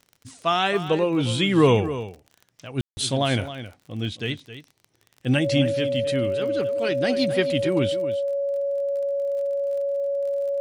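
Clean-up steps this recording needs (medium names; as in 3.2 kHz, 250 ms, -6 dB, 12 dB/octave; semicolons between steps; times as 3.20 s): de-click; band-stop 560 Hz, Q 30; room tone fill 2.81–2.97 s; inverse comb 267 ms -12.5 dB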